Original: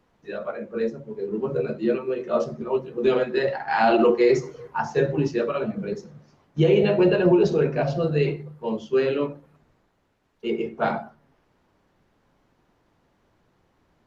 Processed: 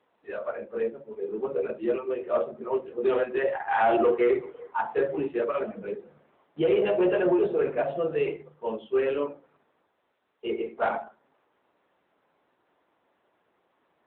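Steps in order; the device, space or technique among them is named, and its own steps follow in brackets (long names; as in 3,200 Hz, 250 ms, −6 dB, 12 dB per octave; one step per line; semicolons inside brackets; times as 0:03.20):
telephone (band-pass filter 390–3,300 Hz; soft clipping −14 dBFS, distortion −20 dB; AMR narrowband 10.2 kbit/s 8,000 Hz)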